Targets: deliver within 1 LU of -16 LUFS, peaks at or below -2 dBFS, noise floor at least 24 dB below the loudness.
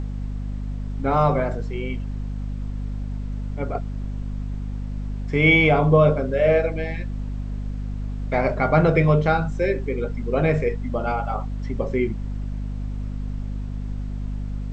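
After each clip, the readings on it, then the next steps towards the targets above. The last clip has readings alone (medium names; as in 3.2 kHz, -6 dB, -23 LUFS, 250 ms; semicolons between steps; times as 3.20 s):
hum 50 Hz; highest harmonic 250 Hz; hum level -26 dBFS; noise floor -30 dBFS; noise floor target -48 dBFS; loudness -23.5 LUFS; peak level -4.5 dBFS; loudness target -16.0 LUFS
-> de-hum 50 Hz, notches 5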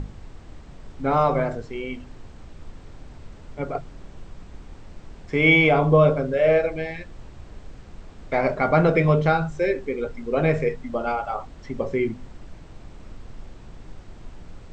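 hum not found; noise floor -44 dBFS; noise floor target -46 dBFS
-> noise print and reduce 6 dB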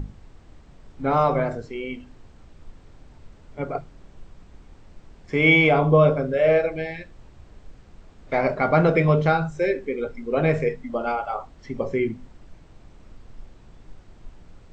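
noise floor -50 dBFS; loudness -22.0 LUFS; peak level -4.5 dBFS; loudness target -16.0 LUFS
-> trim +6 dB; peak limiter -2 dBFS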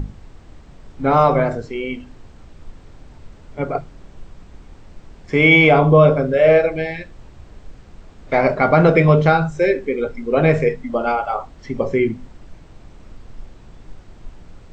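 loudness -16.5 LUFS; peak level -2.0 dBFS; noise floor -44 dBFS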